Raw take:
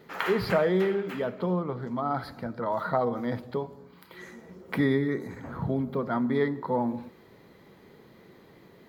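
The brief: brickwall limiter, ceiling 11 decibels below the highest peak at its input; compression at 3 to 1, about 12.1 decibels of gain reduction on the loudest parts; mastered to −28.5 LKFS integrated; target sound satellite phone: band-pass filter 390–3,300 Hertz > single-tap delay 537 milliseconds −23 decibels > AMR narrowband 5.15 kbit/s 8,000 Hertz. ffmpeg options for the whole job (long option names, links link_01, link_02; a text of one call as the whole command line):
ffmpeg -i in.wav -af "acompressor=threshold=-37dB:ratio=3,alimiter=level_in=5.5dB:limit=-24dB:level=0:latency=1,volume=-5.5dB,highpass=390,lowpass=3300,aecho=1:1:537:0.0708,volume=16.5dB" -ar 8000 -c:a libopencore_amrnb -b:a 5150 out.amr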